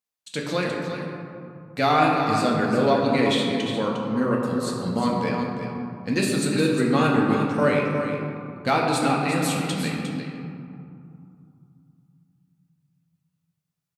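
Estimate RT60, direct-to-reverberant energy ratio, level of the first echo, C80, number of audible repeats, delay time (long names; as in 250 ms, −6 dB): 2.6 s, −2.5 dB, −9.0 dB, 1.5 dB, 1, 355 ms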